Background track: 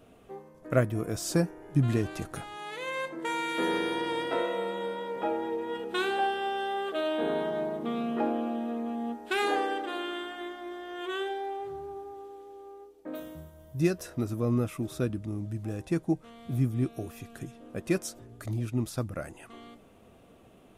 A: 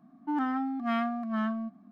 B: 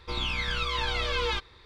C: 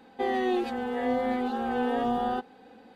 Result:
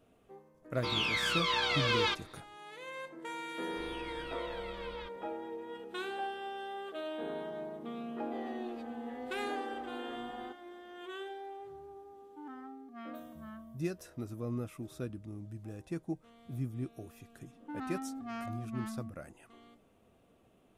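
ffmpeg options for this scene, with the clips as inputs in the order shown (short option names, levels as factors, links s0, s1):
-filter_complex "[2:a]asplit=2[s0][s1];[1:a]asplit=2[s2][s3];[0:a]volume=0.316[s4];[s0]highpass=190[s5];[s1]lowpass=3500[s6];[s3]asoftclip=type=tanh:threshold=0.0335[s7];[s5]atrim=end=1.65,asetpts=PTS-STARTPTS,volume=0.944,afade=t=in:d=0.004:c=hsin,afade=t=out:st=1.646:d=0.004:c=hsin,adelay=750[s8];[s6]atrim=end=1.65,asetpts=PTS-STARTPTS,volume=0.133,afade=t=in:d=0.004:c=hsin,afade=t=out:st=1.646:d=0.004:c=hsin,adelay=162729S[s9];[3:a]atrim=end=2.95,asetpts=PTS-STARTPTS,volume=0.15,afade=t=in:d=0.004:c=hsin,afade=t=out:st=2.946:d=0.004:c=hsin,adelay=8120[s10];[s2]atrim=end=1.91,asetpts=PTS-STARTPTS,volume=0.126,afade=t=in:d=0.004:c=hsin,afade=t=out:st=1.906:d=0.004:c=hsin,adelay=12090[s11];[s7]atrim=end=1.91,asetpts=PTS-STARTPTS,volume=0.447,afade=t=in:d=0.004:c=hsin,afade=t=out:st=1.906:d=0.004:c=hsin,adelay=17410[s12];[s4][s8][s9][s10][s11][s12]amix=inputs=6:normalize=0"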